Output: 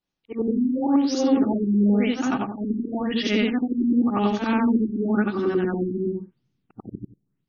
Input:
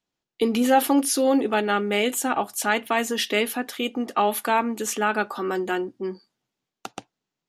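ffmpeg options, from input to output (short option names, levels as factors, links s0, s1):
-af "afftfilt=real='re':imag='-im':win_size=8192:overlap=0.75,asubboost=boost=10.5:cutoff=210,afftfilt=real='re*lt(b*sr/1024,390*pow(6900/390,0.5+0.5*sin(2*PI*0.94*pts/sr)))':imag='im*lt(b*sr/1024,390*pow(6900/390,0.5+0.5*sin(2*PI*0.94*pts/sr)))':win_size=1024:overlap=0.75,volume=1.41"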